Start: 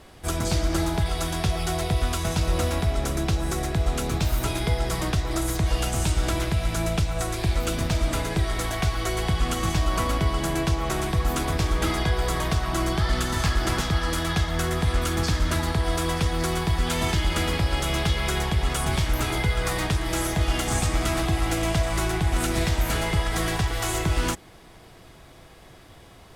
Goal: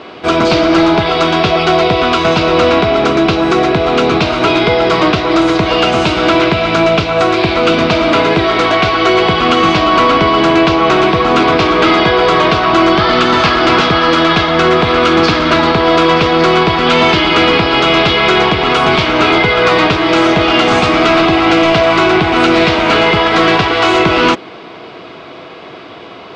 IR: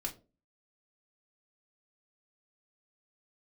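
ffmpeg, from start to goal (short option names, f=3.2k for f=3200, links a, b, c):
-af "highpass=310,equalizer=f=820:t=q:w=4:g=-6,equalizer=f=1.8k:t=q:w=4:g=-9,equalizer=f=3.4k:t=q:w=4:g=-4,lowpass=f=3.7k:w=0.5412,lowpass=f=3.7k:w=1.3066,apsyclip=26.5dB,bandreject=f=550:w=12,volume=-3.5dB"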